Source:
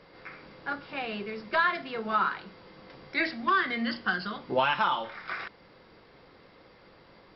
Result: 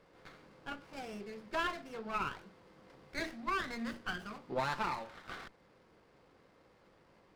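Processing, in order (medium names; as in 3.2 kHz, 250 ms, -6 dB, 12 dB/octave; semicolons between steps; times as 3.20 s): sliding maximum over 9 samples; trim -9 dB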